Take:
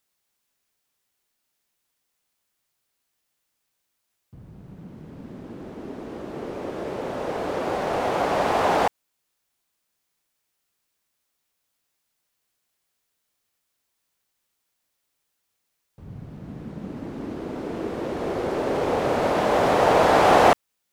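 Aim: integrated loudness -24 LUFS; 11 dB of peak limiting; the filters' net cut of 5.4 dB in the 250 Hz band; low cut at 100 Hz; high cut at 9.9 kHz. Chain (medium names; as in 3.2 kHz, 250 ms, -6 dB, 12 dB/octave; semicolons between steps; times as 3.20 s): high-pass 100 Hz; low-pass 9.9 kHz; peaking EQ 250 Hz -7.5 dB; trim +3 dB; peak limiter -12.5 dBFS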